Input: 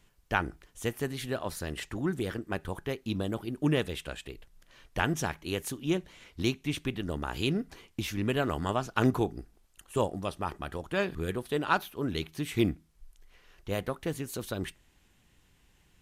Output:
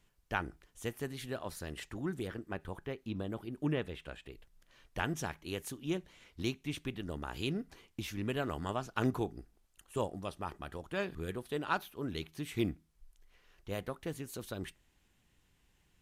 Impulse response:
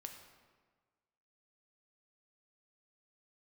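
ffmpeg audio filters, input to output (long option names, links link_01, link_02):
-filter_complex "[0:a]asettb=1/sr,asplit=3[link_01][link_02][link_03];[link_01]atrim=end=2.274[link_04];[link_02]atrim=start=2.27:end=4.32,asetpts=PTS-STARTPTS,afade=type=in:duration=0.004:curve=qsin,afade=type=out:start_time=2.046:duration=0.004:curve=qsin,acrossover=split=3300[link_05][link_06];[link_06]acompressor=threshold=-57dB:ratio=4:attack=1:release=60[link_07];[link_05][link_07]amix=inputs=2:normalize=0[link_08];[link_03]atrim=start=4.316[link_09];[link_04][link_08]acrossfade=duration=0.004:curve1=hsin:curve2=qsin[link_10];[link_10][link_09]acrossfade=duration=0.004:curve1=qsin:curve2=hsin,volume=-6.5dB"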